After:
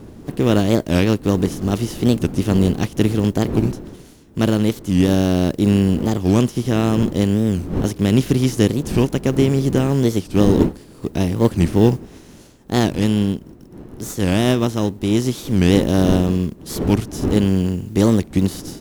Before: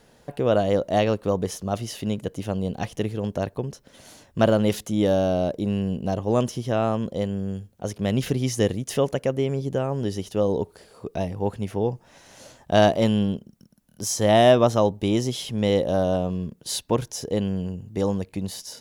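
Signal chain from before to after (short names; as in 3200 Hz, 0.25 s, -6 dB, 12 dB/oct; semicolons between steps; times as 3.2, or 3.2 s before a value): spectral contrast lowered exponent 0.62; wind noise 530 Hz -38 dBFS; in parallel at -11.5 dB: sample-and-hold 19×; on the sum: resonant low shelf 440 Hz +8 dB, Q 1.5; AGC; record warp 45 rpm, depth 250 cents; gain -1 dB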